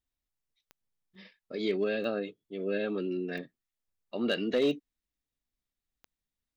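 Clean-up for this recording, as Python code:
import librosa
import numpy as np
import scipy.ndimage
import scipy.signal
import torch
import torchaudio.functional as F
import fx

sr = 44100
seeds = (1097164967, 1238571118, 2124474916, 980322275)

y = fx.fix_declip(x, sr, threshold_db=-20.0)
y = fx.fix_declick_ar(y, sr, threshold=10.0)
y = fx.fix_interpolate(y, sr, at_s=(1.15, 3.38), length_ms=2.6)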